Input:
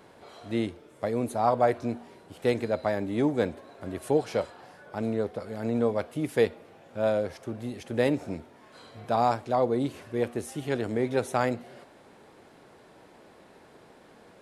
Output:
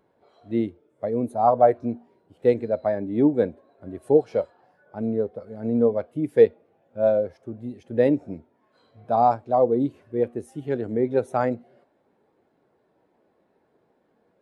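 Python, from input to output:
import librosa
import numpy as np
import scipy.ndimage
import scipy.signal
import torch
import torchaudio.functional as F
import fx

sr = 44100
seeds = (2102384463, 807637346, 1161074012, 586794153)

y = fx.spectral_expand(x, sr, expansion=1.5)
y = F.gain(torch.from_numpy(y), 6.0).numpy()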